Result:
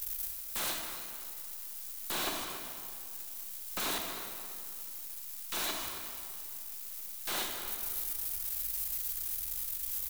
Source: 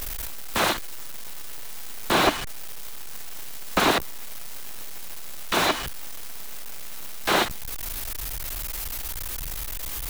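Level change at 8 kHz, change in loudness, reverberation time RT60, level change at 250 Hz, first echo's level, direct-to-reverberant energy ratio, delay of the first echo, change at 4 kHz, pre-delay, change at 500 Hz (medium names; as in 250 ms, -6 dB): -5.0 dB, -8.0 dB, 2.3 s, -17.0 dB, -13.5 dB, 1.5 dB, 275 ms, -10.5 dB, 27 ms, -17.0 dB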